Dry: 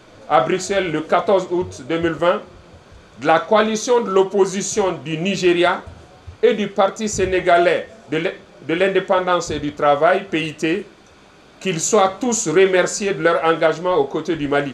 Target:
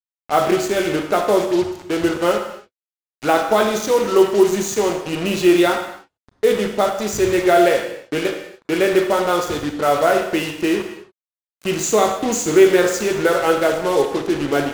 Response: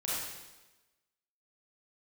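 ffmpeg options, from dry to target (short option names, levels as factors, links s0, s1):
-filter_complex "[0:a]adynamicequalizer=threshold=0.0282:dfrequency=360:dqfactor=2.9:tfrequency=360:tqfactor=2.9:attack=5:release=100:ratio=0.375:range=2.5:mode=boostabove:tftype=bell,acrusher=bits=3:mix=0:aa=0.5,asplit=2[s0][s1];[1:a]atrim=start_sample=2205,afade=t=out:st=0.34:d=0.01,atrim=end_sample=15435[s2];[s1][s2]afir=irnorm=-1:irlink=0,volume=0.398[s3];[s0][s3]amix=inputs=2:normalize=0,volume=0.562"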